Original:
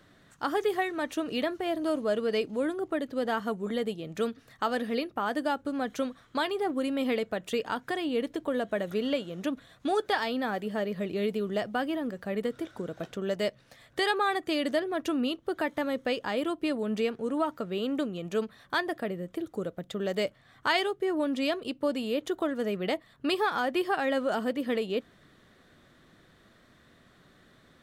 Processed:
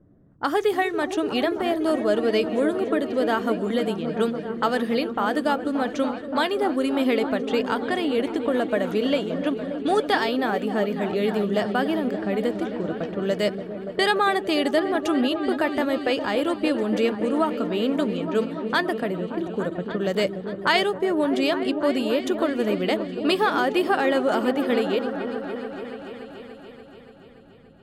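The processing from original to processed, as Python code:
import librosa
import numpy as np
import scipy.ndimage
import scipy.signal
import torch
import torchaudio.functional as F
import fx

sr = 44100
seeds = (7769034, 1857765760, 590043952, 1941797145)

y = fx.env_lowpass(x, sr, base_hz=340.0, full_db=-28.5)
y = fx.echo_opening(y, sr, ms=288, hz=400, octaves=1, feedback_pct=70, wet_db=-6)
y = y * 10.0 ** (6.0 / 20.0)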